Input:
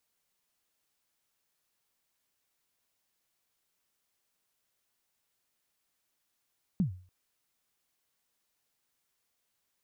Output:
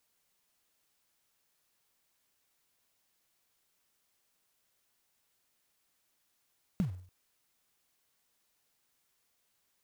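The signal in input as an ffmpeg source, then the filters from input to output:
-f lavfi -i "aevalsrc='0.0891*pow(10,-3*t/0.42)*sin(2*PI*(210*0.112/log(91/210)*(exp(log(91/210)*min(t,0.112)/0.112)-1)+91*max(t-0.112,0)))':d=0.29:s=44100"
-filter_complex "[0:a]asplit=2[s0][s1];[s1]acrusher=bits=2:mode=log:mix=0:aa=0.000001,volume=0.473[s2];[s0][s2]amix=inputs=2:normalize=0,acompressor=threshold=0.0282:ratio=3"

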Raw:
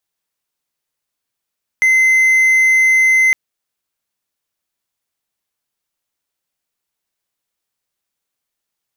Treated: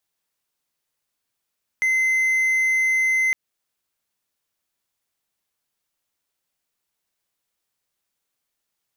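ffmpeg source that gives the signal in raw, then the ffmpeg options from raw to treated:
-f lavfi -i "aevalsrc='0.473*(1-4*abs(mod(2060*t+0.25,1)-0.5))':d=1.51:s=44100"
-af "alimiter=limit=0.178:level=0:latency=1:release=141"

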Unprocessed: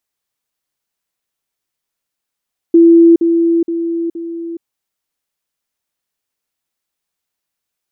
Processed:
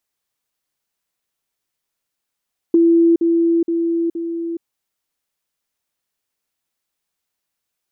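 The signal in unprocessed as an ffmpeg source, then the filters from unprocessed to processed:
-f lavfi -i "aevalsrc='pow(10,(-3-6*floor(t/0.47))/20)*sin(2*PI*335*t)*clip(min(mod(t,0.47),0.42-mod(t,0.47))/0.005,0,1)':d=1.88:s=44100"
-af "acompressor=threshold=0.158:ratio=2"

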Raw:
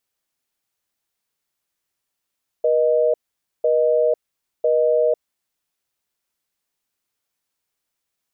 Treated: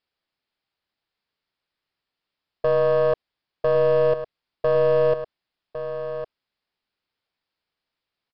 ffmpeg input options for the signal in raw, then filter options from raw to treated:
-f lavfi -i "aevalsrc='0.141*(sin(2*PI*480*t)+sin(2*PI*620*t))*clip(min(mod(t,1),0.5-mod(t,1))/0.005,0,1)':d=2.89:s=44100"
-af "aresample=11025,aeval=exprs='clip(val(0),-1,0.106)':c=same,aresample=44100,aecho=1:1:1106:0.299"

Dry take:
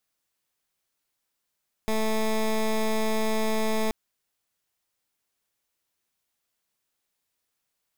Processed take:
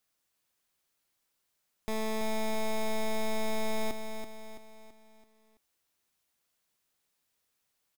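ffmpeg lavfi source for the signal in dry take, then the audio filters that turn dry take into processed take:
-f lavfi -i "aevalsrc='0.0596*(2*lt(mod(219*t,1),0.15)-1)':d=2.03:s=44100"
-filter_complex "[0:a]alimiter=level_in=2.24:limit=0.0631:level=0:latency=1,volume=0.447,asplit=2[s0][s1];[s1]aecho=0:1:332|664|996|1328|1660:0.422|0.194|0.0892|0.041|0.0189[s2];[s0][s2]amix=inputs=2:normalize=0"

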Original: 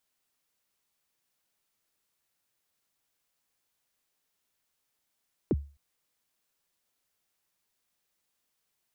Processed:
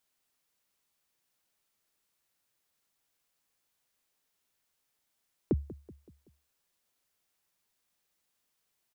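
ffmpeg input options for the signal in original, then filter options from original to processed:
-f lavfi -i "aevalsrc='0.112*pow(10,-3*t/0.34)*sin(2*PI*(460*0.037/log(71/460)*(exp(log(71/460)*min(t,0.037)/0.037)-1)+71*max(t-0.037,0)))':d=0.26:s=44100"
-filter_complex "[0:a]asplit=2[s0][s1];[s1]adelay=189,lowpass=f=2000:p=1,volume=0.15,asplit=2[s2][s3];[s3]adelay=189,lowpass=f=2000:p=1,volume=0.48,asplit=2[s4][s5];[s5]adelay=189,lowpass=f=2000:p=1,volume=0.48,asplit=2[s6][s7];[s7]adelay=189,lowpass=f=2000:p=1,volume=0.48[s8];[s0][s2][s4][s6][s8]amix=inputs=5:normalize=0"

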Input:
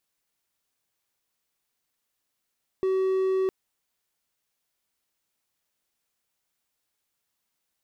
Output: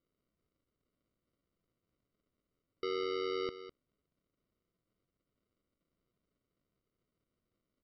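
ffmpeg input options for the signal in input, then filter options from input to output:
-f lavfi -i "aevalsrc='0.106*(1-4*abs(mod(379*t+0.25,1)-0.5))':d=0.66:s=44100"
-af "alimiter=level_in=2.11:limit=0.0631:level=0:latency=1,volume=0.473,aresample=11025,acrusher=samples=13:mix=1:aa=0.000001,aresample=44100,aecho=1:1:204:0.224"

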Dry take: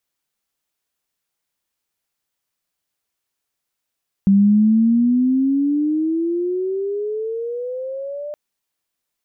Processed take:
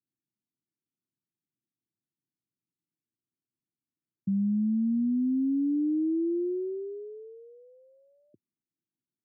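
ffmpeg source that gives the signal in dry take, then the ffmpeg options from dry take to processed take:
-f lavfi -i "aevalsrc='pow(10,(-9-17*t/4.07)/20)*sin(2*PI*194*4.07/(19.5*log(2)/12)*(exp(19.5*log(2)/12*t/4.07)-1))':d=4.07:s=44100"
-af "aresample=16000,asoftclip=type=tanh:threshold=0.0562,aresample=44100,asuperpass=centerf=190:order=12:qfactor=0.73"

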